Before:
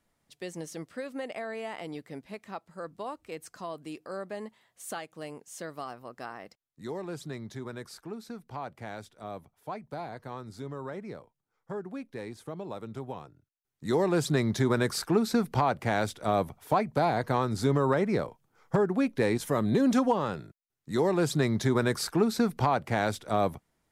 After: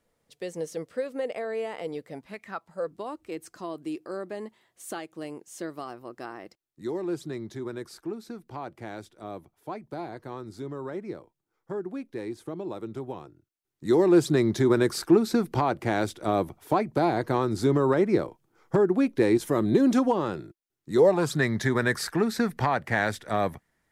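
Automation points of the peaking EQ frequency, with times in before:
peaking EQ +11.5 dB 0.4 oct
2.06 s 480 Hz
2.42 s 2.4 kHz
2.93 s 340 Hz
20.92 s 340 Hz
21.39 s 1.8 kHz

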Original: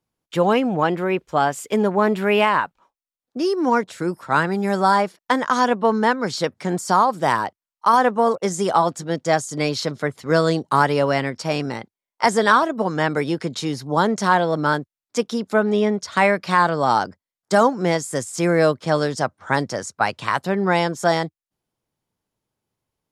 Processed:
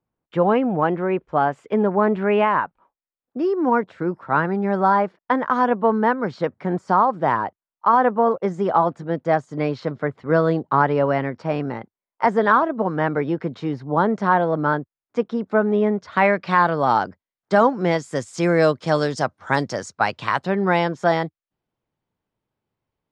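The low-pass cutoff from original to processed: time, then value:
15.87 s 1.7 kHz
16.34 s 3 kHz
17.66 s 3 kHz
18.74 s 6.7 kHz
19.67 s 6.7 kHz
20.97 s 3 kHz

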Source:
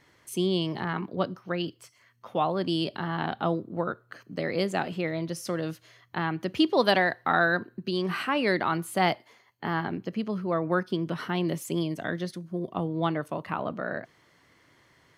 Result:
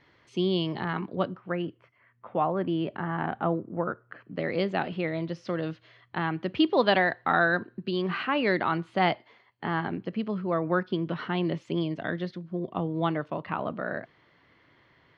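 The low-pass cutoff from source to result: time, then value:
low-pass 24 dB/octave
1.05 s 4.4 kHz
1.59 s 2.3 kHz
4.02 s 2.3 kHz
4.59 s 3.9 kHz

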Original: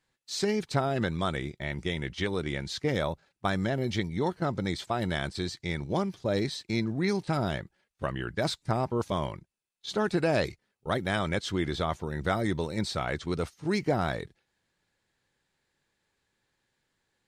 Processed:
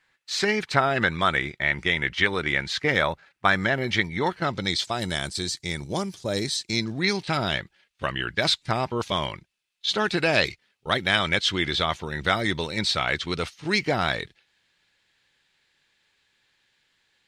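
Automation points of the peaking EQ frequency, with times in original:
peaking EQ +14.5 dB 2.3 oct
4.23 s 1.9 kHz
5.21 s 8.8 kHz
6.49 s 8.8 kHz
7.15 s 3 kHz

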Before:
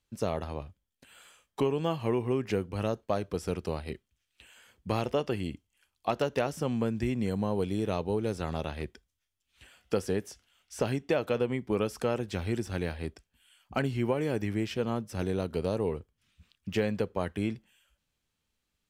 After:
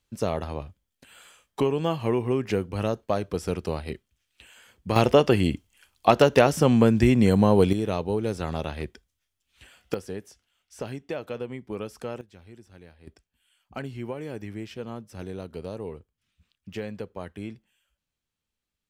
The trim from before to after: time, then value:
+4 dB
from 4.96 s +11.5 dB
from 7.73 s +3.5 dB
from 9.94 s -5 dB
from 12.21 s -17 dB
from 13.07 s -5.5 dB

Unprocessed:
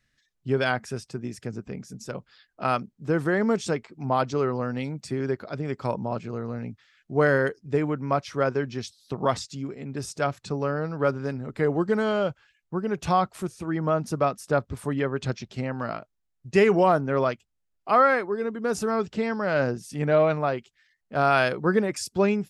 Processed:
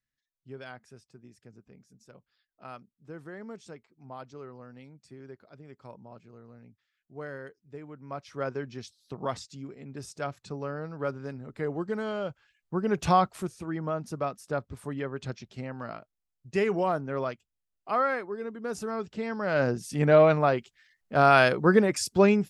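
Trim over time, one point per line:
7.86 s -19 dB
8.44 s -8 dB
12.22 s -8 dB
13.00 s +2 dB
13.93 s -7.5 dB
19.14 s -7.5 dB
19.87 s +2 dB

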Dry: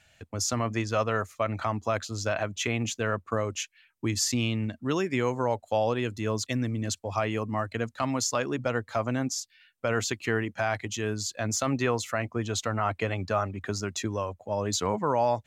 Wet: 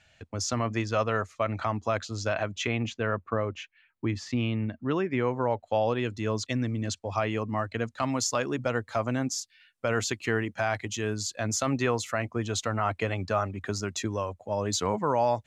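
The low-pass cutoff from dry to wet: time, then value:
2.51 s 6.4 kHz
3.10 s 2.4 kHz
5.33 s 2.4 kHz
6.15 s 6.3 kHz
7.78 s 6.3 kHz
8.19 s 12 kHz

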